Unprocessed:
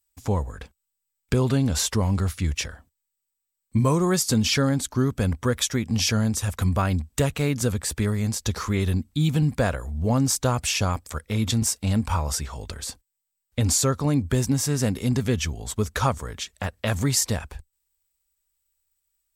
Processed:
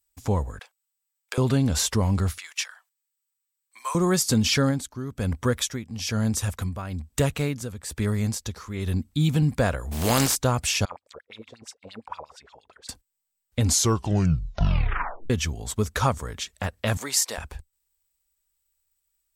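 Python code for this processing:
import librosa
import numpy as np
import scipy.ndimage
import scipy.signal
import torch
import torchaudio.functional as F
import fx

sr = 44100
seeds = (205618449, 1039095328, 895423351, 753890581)

y = fx.highpass(x, sr, hz=650.0, slope=24, at=(0.59, 1.38))
y = fx.highpass(y, sr, hz=960.0, slope=24, at=(2.38, 3.95))
y = fx.tremolo(y, sr, hz=1.1, depth=0.73, at=(4.7, 9.07), fade=0.02)
y = fx.spec_flatten(y, sr, power=0.46, at=(9.91, 10.34), fade=0.02)
y = fx.filter_lfo_bandpass(y, sr, shape='sine', hz=8.6, low_hz=420.0, high_hz=4200.0, q=5.0, at=(10.85, 12.89))
y = fx.highpass(y, sr, hz=560.0, slope=12, at=(16.97, 17.38))
y = fx.edit(y, sr, fx.tape_stop(start_s=13.64, length_s=1.66), tone=tone)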